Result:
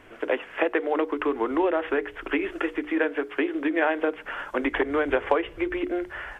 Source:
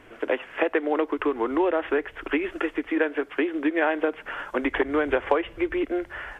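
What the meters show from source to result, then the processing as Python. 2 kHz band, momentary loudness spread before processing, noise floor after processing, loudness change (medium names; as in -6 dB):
0.0 dB, 5 LU, -46 dBFS, -0.5 dB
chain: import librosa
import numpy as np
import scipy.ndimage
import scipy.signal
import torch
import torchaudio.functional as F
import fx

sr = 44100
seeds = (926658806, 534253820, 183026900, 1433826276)

y = fx.hum_notches(x, sr, base_hz=60, count=8)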